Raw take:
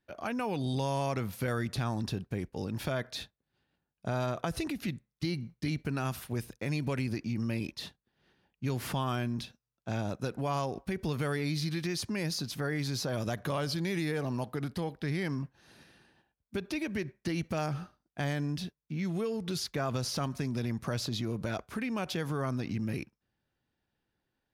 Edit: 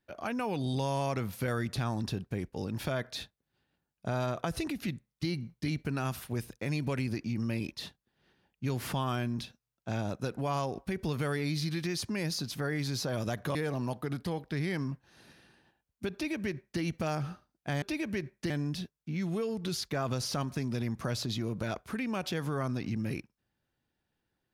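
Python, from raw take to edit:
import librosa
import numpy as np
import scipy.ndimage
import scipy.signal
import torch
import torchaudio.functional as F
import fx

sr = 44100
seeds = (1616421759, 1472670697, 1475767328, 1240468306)

y = fx.edit(x, sr, fx.cut(start_s=13.55, length_s=0.51),
    fx.duplicate(start_s=16.64, length_s=0.68, to_s=18.33), tone=tone)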